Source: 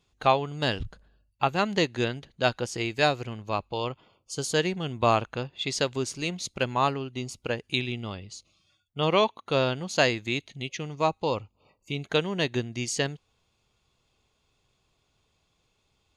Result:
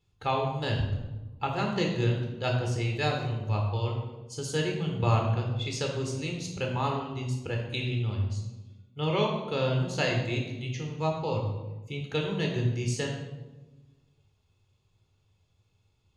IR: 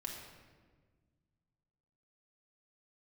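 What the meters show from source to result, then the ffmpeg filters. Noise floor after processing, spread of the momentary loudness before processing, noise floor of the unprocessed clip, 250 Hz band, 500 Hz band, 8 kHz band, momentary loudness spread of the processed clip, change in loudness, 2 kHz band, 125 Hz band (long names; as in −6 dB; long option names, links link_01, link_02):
−70 dBFS, 11 LU, −73 dBFS, −1.0 dB, −3.5 dB, −5.5 dB, 9 LU, −2.0 dB, −5.0 dB, +6.0 dB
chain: -filter_complex "[0:a]equalizer=frequency=100:width_type=o:width=0.82:gain=14.5[link_01];[1:a]atrim=start_sample=2205,asetrate=70560,aresample=44100[link_02];[link_01][link_02]afir=irnorm=-1:irlink=0"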